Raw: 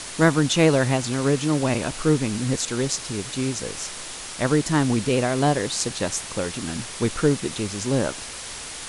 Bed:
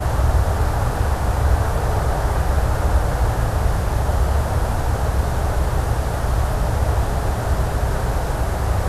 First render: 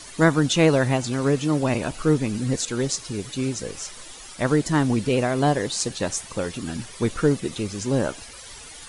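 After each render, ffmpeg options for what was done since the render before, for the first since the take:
-af "afftdn=nr=12:nf=-36"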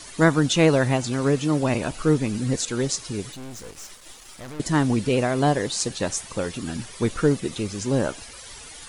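-filter_complex "[0:a]asettb=1/sr,asplit=3[s0][s1][s2];[s0]atrim=end=3.324[s3];[s1]atrim=start=3.32:end=4.6,asetpts=PTS-STARTPTS,afade=t=in:d=0.004:c=qsin,afade=t=out:st=1.276:d=0.004:c=qsin,aeval=exprs='(tanh(63.1*val(0)+0.8)-tanh(0.8))/63.1':c=same[s4];[s2]atrim=start=4.596[s5];[s3][s4]acrossfade=d=0.004:c1=hsin:c2=qsin[s6];[s6][s5]acrossfade=d=0.004:c1=qsin:c2=hsin"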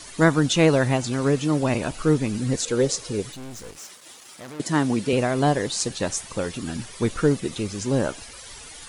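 -filter_complex "[0:a]asettb=1/sr,asplit=3[s0][s1][s2];[s0]atrim=end=2.654[s3];[s1]atrim=start=2.65:end=3.23,asetpts=PTS-STARTPTS,afade=t=in:d=0.004:c=qsin,afade=t=out:st=0.576:d=0.004:c=qsin,equalizer=f=490:t=o:w=0.53:g=11[s4];[s2]atrim=start=3.226[s5];[s3][s4]acrossfade=d=0.004:c1=hsin:c2=qsin[s6];[s6][s5]acrossfade=d=0.004:c1=qsin:c2=hsin,asettb=1/sr,asplit=3[s7][s8][s9];[s7]atrim=end=3.774[s10];[s8]atrim=start=3.77:end=5.13,asetpts=PTS-STARTPTS,afade=t=in:d=0.004:c=qsin,afade=t=out:st=1.356:d=0.004:c=qsin,highpass=150[s11];[s9]atrim=start=5.126[s12];[s10][s11]acrossfade=d=0.004:c1=hsin:c2=qsin[s13];[s13][s12]acrossfade=d=0.004:c1=qsin:c2=hsin"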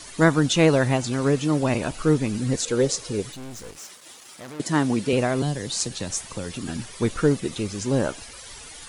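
-filter_complex "[0:a]asettb=1/sr,asplit=3[s0][s1][s2];[s0]atrim=end=5.424[s3];[s1]atrim=start=5.42:end=6.68,asetpts=PTS-STARTPTS,afade=t=in:d=0.004:c=qsin,afade=t=out:st=1.256:d=0.004:c=qsin,acrossover=split=210|3000[s4][s5][s6];[s5]acompressor=threshold=0.0316:ratio=6:attack=3.2:release=140:knee=2.83:detection=peak[s7];[s4][s7][s6]amix=inputs=3:normalize=0[s8];[s2]atrim=start=6.676[s9];[s3][s8]acrossfade=d=0.004:c1=hsin:c2=qsin[s10];[s10][s9]acrossfade=d=0.004:c1=qsin:c2=hsin"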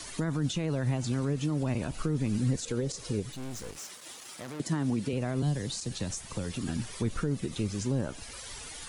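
-filter_complex "[0:a]alimiter=limit=0.15:level=0:latency=1:release=78,acrossover=split=230[s0][s1];[s1]acompressor=threshold=0.00891:ratio=2[s2];[s0][s2]amix=inputs=2:normalize=0"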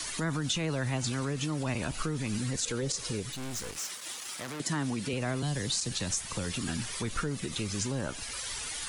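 -filter_complex "[0:a]acrossover=split=540|960[s0][s1][s2];[s0]alimiter=level_in=1.33:limit=0.0631:level=0:latency=1,volume=0.75[s3];[s2]acontrast=58[s4];[s3][s1][s4]amix=inputs=3:normalize=0"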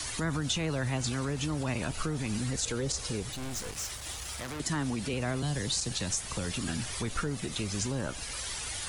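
-filter_complex "[1:a]volume=0.0376[s0];[0:a][s0]amix=inputs=2:normalize=0"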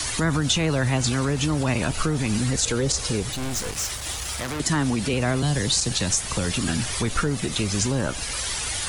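-af "volume=2.82"

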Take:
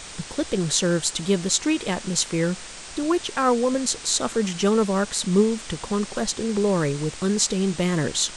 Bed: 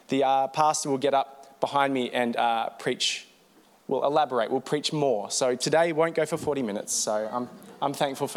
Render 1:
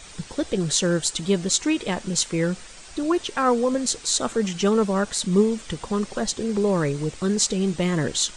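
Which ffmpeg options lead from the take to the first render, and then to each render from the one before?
-af "afftdn=nr=8:nf=-39"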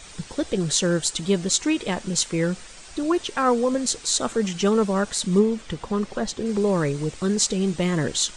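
-filter_complex "[0:a]asettb=1/sr,asplit=3[s0][s1][s2];[s0]atrim=end=5.394[s3];[s1]atrim=start=5.39:end=6.46,asetpts=PTS-STARTPTS,afade=t=in:d=0.004:c=qsin,afade=t=out:st=1.066:d=0.004:c=qsin,lowpass=f=3700:p=1[s4];[s2]atrim=start=6.456[s5];[s3][s4]acrossfade=d=0.004:c1=hsin:c2=qsin[s6];[s6][s5]acrossfade=d=0.004:c1=qsin:c2=hsin"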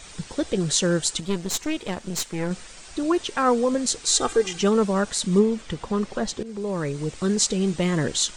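-filter_complex "[0:a]asettb=1/sr,asplit=3[s0][s1][s2];[s0]atrim=end=1.204[s3];[s1]atrim=start=1.2:end=2.51,asetpts=PTS-STARTPTS,afade=t=in:d=0.004:c=qsin,afade=t=out:st=1.306:d=0.004:c=qsin,aeval=exprs='(tanh(8.91*val(0)+0.8)-tanh(0.8))/8.91':c=same[s4];[s2]atrim=start=2.506[s5];[s3][s4]acrossfade=d=0.004:c1=hsin:c2=qsin[s6];[s6][s5]acrossfade=d=0.004:c1=qsin:c2=hsin,asettb=1/sr,asplit=3[s7][s8][s9];[s7]atrim=end=4.064[s10];[s8]atrim=start=4.06:end=4.59,asetpts=PTS-STARTPTS,afade=t=in:d=0.004:c=qsin,afade=t=out:st=0.526:d=0.004:c=qsin,aecho=1:1:2.5:0.87,atrim=end_sample=23373[s11];[s9]atrim=start=4.586[s12];[s10][s11]acrossfade=d=0.004:c1=hsin:c2=qsin[s13];[s13][s12]acrossfade=d=0.004:c1=qsin:c2=hsin,asplit=2[s14][s15];[s14]atrim=end=6.43,asetpts=PTS-STARTPTS,afade=t=out:st=6.426:d=0.004:c=hsin:silence=0.211349[s16];[s15]atrim=start=6.43,asetpts=PTS-STARTPTS,afade=t=in:d=0.79:silence=0.211349[s17];[s16][s17]concat=n=2:v=0:a=1"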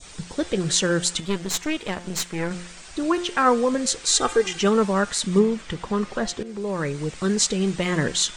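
-af "bandreject=f=176:t=h:w=4,bandreject=f=352:t=h:w=4,bandreject=f=528:t=h:w=4,bandreject=f=704:t=h:w=4,bandreject=f=880:t=h:w=4,bandreject=f=1056:t=h:w=4,bandreject=f=1232:t=h:w=4,bandreject=f=1408:t=h:w=4,bandreject=f=1584:t=h:w=4,bandreject=f=1760:t=h:w=4,bandreject=f=1936:t=h:w=4,bandreject=f=2112:t=h:w=4,bandreject=f=2288:t=h:w=4,bandreject=f=2464:t=h:w=4,bandreject=f=2640:t=h:w=4,bandreject=f=2816:t=h:w=4,bandreject=f=2992:t=h:w=4,bandreject=f=3168:t=h:w=4,bandreject=f=3344:t=h:w=4,bandreject=f=3520:t=h:w=4,adynamicequalizer=threshold=0.00891:dfrequency=1800:dqfactor=0.78:tfrequency=1800:tqfactor=0.78:attack=5:release=100:ratio=0.375:range=2.5:mode=boostabove:tftype=bell"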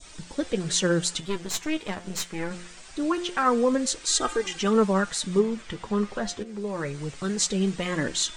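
-af "flanger=delay=3.1:depth=6.8:regen=45:speed=0.24:shape=sinusoidal"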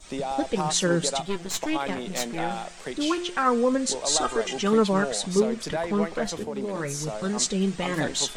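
-filter_complex "[1:a]volume=0.422[s0];[0:a][s0]amix=inputs=2:normalize=0"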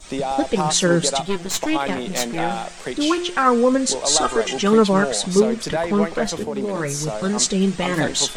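-af "volume=2,alimiter=limit=0.794:level=0:latency=1"

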